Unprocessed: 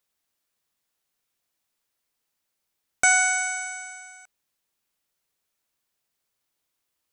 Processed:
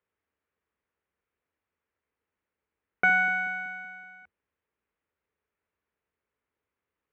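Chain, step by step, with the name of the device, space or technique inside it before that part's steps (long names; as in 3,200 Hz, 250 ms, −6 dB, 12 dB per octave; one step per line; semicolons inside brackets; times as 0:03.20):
sub-octave bass pedal (sub-octave generator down 2 octaves, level +2 dB; loudspeaker in its box 65–2,300 Hz, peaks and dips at 130 Hz −5 dB, 440 Hz +7 dB, 720 Hz −4 dB)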